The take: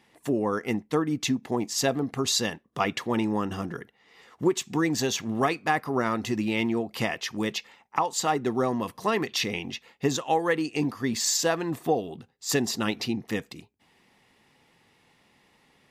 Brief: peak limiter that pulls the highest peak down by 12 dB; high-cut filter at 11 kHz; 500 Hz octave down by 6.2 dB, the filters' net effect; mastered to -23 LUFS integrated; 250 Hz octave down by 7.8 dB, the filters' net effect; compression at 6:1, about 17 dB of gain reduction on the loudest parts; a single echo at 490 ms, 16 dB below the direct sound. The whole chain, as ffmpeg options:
-af "lowpass=11000,equalizer=f=250:t=o:g=-8.5,equalizer=f=500:t=o:g=-5,acompressor=threshold=0.00891:ratio=6,alimiter=level_in=3.35:limit=0.0631:level=0:latency=1,volume=0.299,aecho=1:1:490:0.158,volume=14.1"

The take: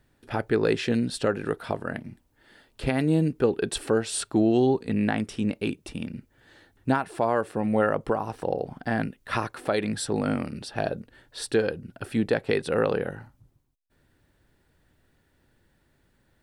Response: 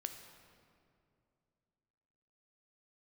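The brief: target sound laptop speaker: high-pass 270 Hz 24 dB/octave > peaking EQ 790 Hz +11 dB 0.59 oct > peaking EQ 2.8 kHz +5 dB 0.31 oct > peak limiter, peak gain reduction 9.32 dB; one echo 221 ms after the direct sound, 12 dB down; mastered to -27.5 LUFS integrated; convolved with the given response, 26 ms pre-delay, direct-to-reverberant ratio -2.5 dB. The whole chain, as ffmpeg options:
-filter_complex "[0:a]aecho=1:1:221:0.251,asplit=2[s0][s1];[1:a]atrim=start_sample=2205,adelay=26[s2];[s1][s2]afir=irnorm=-1:irlink=0,volume=1.68[s3];[s0][s3]amix=inputs=2:normalize=0,highpass=f=270:w=0.5412,highpass=f=270:w=1.3066,equalizer=f=790:t=o:w=0.59:g=11,equalizer=f=2800:t=o:w=0.31:g=5,volume=0.562,alimiter=limit=0.188:level=0:latency=1"

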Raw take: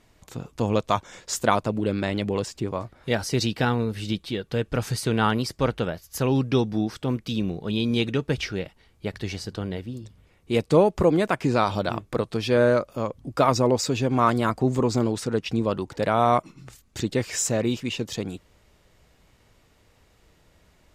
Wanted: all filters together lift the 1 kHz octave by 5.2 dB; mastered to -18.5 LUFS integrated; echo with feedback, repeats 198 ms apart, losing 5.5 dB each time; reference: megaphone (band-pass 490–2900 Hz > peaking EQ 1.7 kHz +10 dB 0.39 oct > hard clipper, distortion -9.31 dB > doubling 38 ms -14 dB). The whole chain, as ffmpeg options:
-filter_complex "[0:a]highpass=490,lowpass=2900,equalizer=f=1000:t=o:g=6,equalizer=f=1700:t=o:w=0.39:g=10,aecho=1:1:198|396|594|792|990|1188|1386:0.531|0.281|0.149|0.079|0.0419|0.0222|0.0118,asoftclip=type=hard:threshold=0.178,asplit=2[s0][s1];[s1]adelay=38,volume=0.2[s2];[s0][s2]amix=inputs=2:normalize=0,volume=2.11"

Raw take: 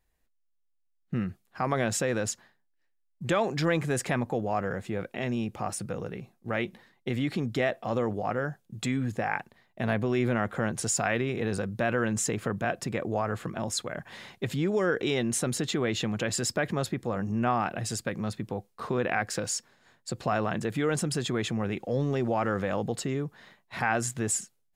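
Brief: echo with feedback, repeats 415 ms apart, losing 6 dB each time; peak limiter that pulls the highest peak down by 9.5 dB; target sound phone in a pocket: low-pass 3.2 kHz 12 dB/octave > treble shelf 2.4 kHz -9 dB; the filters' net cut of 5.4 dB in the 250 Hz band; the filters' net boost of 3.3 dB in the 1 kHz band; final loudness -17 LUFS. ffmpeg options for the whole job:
-af "equalizer=f=250:t=o:g=-7.5,equalizer=f=1000:t=o:g=7,alimiter=limit=0.119:level=0:latency=1,lowpass=3200,highshelf=f=2400:g=-9,aecho=1:1:415|830|1245|1660|2075|2490:0.501|0.251|0.125|0.0626|0.0313|0.0157,volume=5.96"

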